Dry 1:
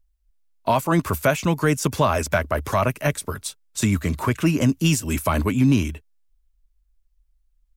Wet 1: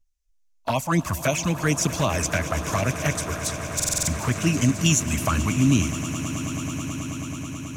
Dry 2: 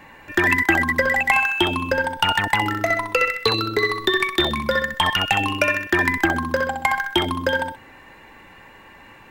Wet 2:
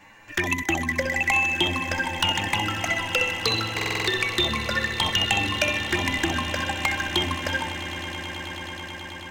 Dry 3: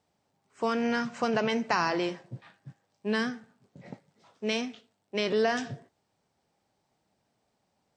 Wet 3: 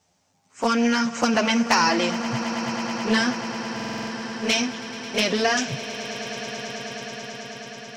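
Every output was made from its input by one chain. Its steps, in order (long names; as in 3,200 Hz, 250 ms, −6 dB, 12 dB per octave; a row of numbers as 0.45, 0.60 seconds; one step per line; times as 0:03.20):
graphic EQ with 15 bands 400 Hz −4 dB, 2,500 Hz +3 dB, 6,300 Hz +11 dB
flanger swept by the level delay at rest 11.4 ms, full sweep at −14.5 dBFS
echo that builds up and dies away 108 ms, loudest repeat 8, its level −17 dB
buffer that repeats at 0:03.75, samples 2,048, times 6
loudness normalisation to −24 LKFS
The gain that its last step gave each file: −1.0, −3.0, +10.0 decibels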